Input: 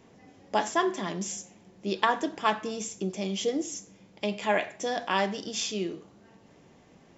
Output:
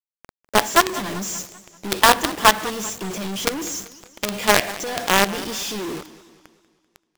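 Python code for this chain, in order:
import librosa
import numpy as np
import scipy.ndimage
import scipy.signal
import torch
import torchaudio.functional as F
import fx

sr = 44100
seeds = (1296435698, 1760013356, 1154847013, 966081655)

p1 = fx.rider(x, sr, range_db=10, speed_s=2.0)
p2 = x + (p1 * librosa.db_to_amplitude(1.0))
p3 = fx.quant_companded(p2, sr, bits=2)
p4 = fx.echo_warbled(p3, sr, ms=194, feedback_pct=50, rate_hz=2.8, cents=152, wet_db=-17.0)
y = p4 * librosa.db_to_amplitude(-2.5)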